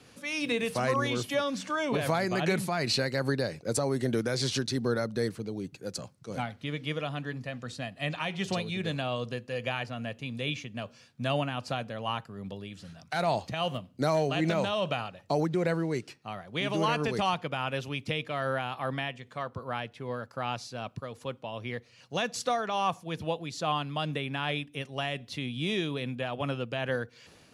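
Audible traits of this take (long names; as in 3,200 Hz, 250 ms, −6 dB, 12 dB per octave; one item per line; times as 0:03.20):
tremolo triangle 2.5 Hz, depth 35%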